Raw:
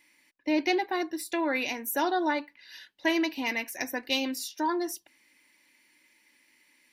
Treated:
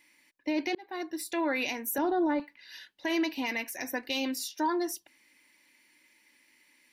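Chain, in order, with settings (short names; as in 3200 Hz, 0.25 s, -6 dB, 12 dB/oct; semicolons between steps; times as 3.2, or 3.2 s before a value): 0.75–1.25 fade in; 1.98–2.4 tilt -4.5 dB/oct; limiter -21 dBFS, peak gain reduction 8 dB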